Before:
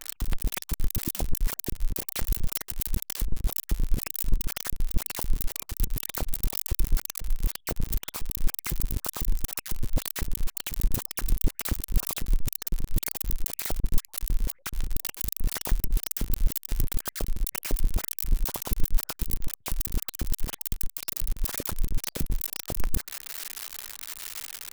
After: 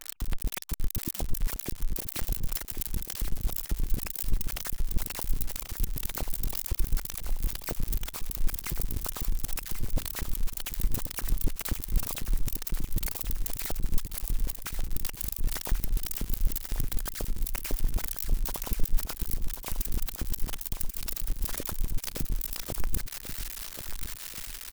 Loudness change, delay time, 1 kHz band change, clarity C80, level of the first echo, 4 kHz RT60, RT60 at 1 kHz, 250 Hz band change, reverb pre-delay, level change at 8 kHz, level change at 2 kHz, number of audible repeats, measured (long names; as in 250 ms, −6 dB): −2.5 dB, 1,087 ms, −2.5 dB, no reverb audible, −9.0 dB, no reverb audible, no reverb audible, −2.5 dB, no reverb audible, −2.5 dB, −2.5 dB, 4